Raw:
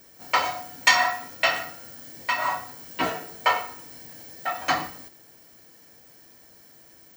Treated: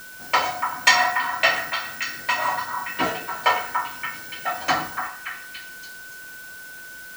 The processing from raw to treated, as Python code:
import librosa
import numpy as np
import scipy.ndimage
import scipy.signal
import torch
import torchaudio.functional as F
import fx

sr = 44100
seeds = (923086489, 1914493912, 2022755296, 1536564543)

y = x + 10.0 ** (-42.0 / 20.0) * np.sin(2.0 * np.pi * 1500.0 * np.arange(len(x)) / sr)
y = fx.echo_stepped(y, sr, ms=287, hz=1200.0, octaves=0.7, feedback_pct=70, wet_db=-4)
y = fx.quant_dither(y, sr, seeds[0], bits=8, dither='triangular')
y = F.gain(torch.from_numpy(y), 2.0).numpy()